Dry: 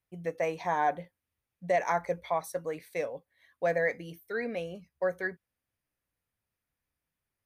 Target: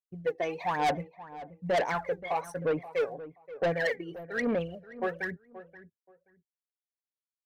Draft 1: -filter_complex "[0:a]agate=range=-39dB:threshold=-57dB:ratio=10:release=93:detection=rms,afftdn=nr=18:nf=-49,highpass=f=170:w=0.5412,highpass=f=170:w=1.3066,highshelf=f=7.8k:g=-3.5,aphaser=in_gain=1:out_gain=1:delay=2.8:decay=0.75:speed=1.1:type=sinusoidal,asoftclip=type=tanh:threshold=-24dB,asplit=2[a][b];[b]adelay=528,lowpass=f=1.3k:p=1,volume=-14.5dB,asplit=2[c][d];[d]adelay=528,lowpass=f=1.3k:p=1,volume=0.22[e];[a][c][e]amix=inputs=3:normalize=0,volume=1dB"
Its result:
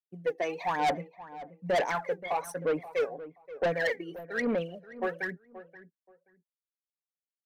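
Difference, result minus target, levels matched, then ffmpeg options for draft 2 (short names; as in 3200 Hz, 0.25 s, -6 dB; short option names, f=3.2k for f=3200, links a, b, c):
125 Hz band -3.0 dB; 8000 Hz band +2.5 dB
-filter_complex "[0:a]agate=range=-39dB:threshold=-57dB:ratio=10:release=93:detection=rms,afftdn=nr=18:nf=-49,highshelf=f=7.8k:g=-14.5,aphaser=in_gain=1:out_gain=1:delay=2.8:decay=0.75:speed=1.1:type=sinusoidal,asoftclip=type=tanh:threshold=-24dB,asplit=2[a][b];[b]adelay=528,lowpass=f=1.3k:p=1,volume=-14.5dB,asplit=2[c][d];[d]adelay=528,lowpass=f=1.3k:p=1,volume=0.22[e];[a][c][e]amix=inputs=3:normalize=0,volume=1dB"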